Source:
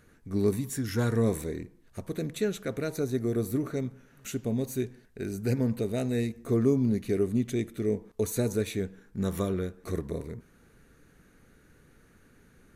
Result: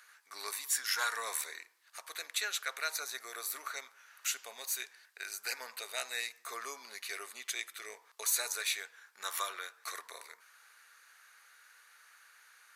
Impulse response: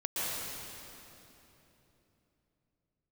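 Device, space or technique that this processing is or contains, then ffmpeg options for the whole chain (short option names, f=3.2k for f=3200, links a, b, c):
headphones lying on a table: -af "highpass=f=1k:w=0.5412,highpass=f=1k:w=1.3066,equalizer=f=4.7k:t=o:w=0.42:g=4.5,volume=6dB"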